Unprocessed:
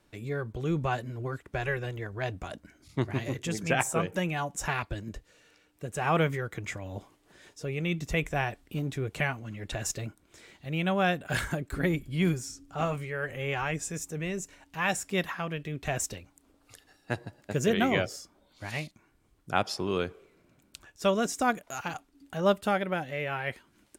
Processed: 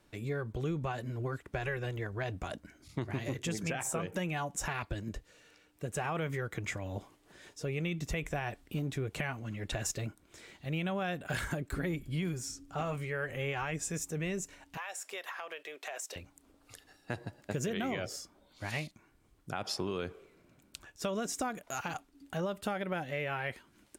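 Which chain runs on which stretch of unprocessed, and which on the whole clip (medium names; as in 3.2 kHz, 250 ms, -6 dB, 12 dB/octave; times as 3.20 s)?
14.77–16.16 s: high-pass 480 Hz 24 dB/octave + compression 8:1, threshold -37 dBFS
whole clip: peak limiter -20.5 dBFS; compression, threshold -31 dBFS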